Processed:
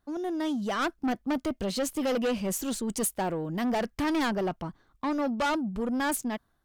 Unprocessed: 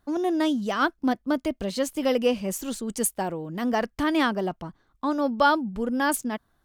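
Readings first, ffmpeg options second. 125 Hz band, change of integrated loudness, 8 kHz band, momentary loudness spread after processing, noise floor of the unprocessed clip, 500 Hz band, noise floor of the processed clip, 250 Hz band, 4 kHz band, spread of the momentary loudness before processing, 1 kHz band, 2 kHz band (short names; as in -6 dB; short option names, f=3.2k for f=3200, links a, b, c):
0.0 dB, -4.0 dB, -2.0 dB, 5 LU, -70 dBFS, -4.5 dB, -72 dBFS, -3.0 dB, -3.5 dB, 9 LU, -5.5 dB, -5.5 dB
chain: -af "dynaudnorm=f=420:g=3:m=10dB,asoftclip=type=tanh:threshold=-17.5dB,volume=-6.5dB"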